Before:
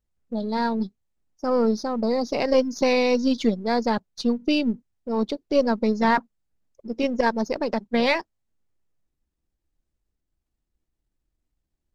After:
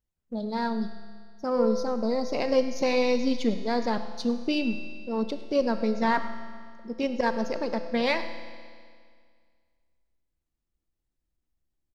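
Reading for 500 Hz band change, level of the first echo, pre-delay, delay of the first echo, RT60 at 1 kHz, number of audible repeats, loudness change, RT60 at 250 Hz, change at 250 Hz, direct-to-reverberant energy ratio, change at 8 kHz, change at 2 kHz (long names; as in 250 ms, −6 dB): −3.5 dB, −17.0 dB, 20 ms, 104 ms, 2.0 s, 1, −4.0 dB, 2.0 s, −4.5 dB, 7.5 dB, can't be measured, −4.0 dB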